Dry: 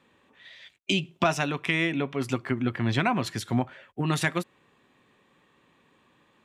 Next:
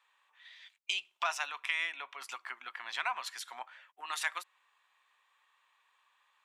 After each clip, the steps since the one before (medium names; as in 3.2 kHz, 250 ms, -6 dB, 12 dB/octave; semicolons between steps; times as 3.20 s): Chebyshev high-pass 940 Hz, order 3; trim -5 dB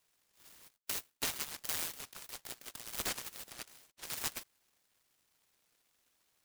delay time shaken by noise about 2.4 kHz, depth 0.45 ms; trim -3.5 dB